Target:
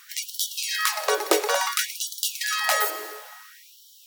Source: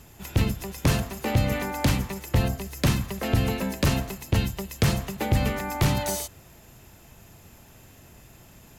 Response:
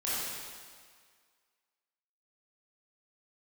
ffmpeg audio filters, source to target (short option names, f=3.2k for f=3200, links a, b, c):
-filter_complex "[0:a]asetrate=95256,aresample=44100,asplit=2[a][b];[1:a]atrim=start_sample=2205,adelay=86[c];[b][c]afir=irnorm=-1:irlink=0,volume=-18.5dB[d];[a][d]amix=inputs=2:normalize=0,afftfilt=real='re*gte(b*sr/1024,310*pow(3000/310,0.5+0.5*sin(2*PI*0.58*pts/sr)))':imag='im*gte(b*sr/1024,310*pow(3000/310,0.5+0.5*sin(2*PI*0.58*pts/sr)))':win_size=1024:overlap=0.75,volume=6.5dB"